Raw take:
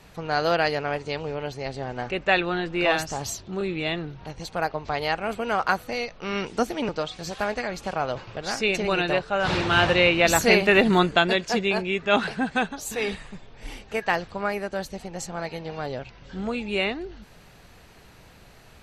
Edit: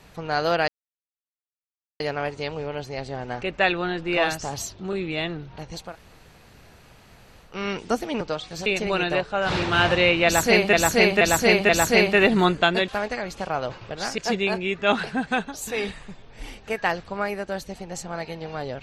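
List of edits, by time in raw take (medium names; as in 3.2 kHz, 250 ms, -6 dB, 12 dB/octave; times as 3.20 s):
0.68 s: insert silence 1.32 s
4.56–6.17 s: room tone, crossfade 0.16 s
7.34–8.64 s: move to 11.42 s
10.23–10.71 s: loop, 4 plays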